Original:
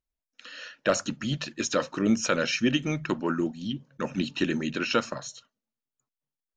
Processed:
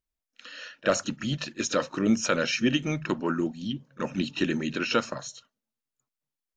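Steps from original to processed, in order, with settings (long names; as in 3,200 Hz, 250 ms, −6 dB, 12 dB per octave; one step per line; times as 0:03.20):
echo ahead of the sound 31 ms −20 dB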